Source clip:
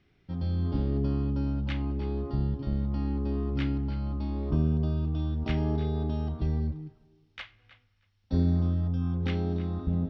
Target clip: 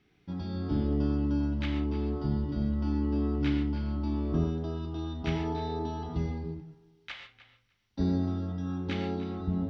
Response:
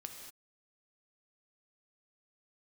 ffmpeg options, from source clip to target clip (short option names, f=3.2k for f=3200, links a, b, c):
-filter_complex "[0:a]lowshelf=f=69:g=-8.5,bandreject=f=580:w=12,asetrate=45938,aresample=44100[a];[1:a]atrim=start_sample=2205,asetrate=70560,aresample=44100[b];[a][b]afir=irnorm=-1:irlink=0,volume=9dB"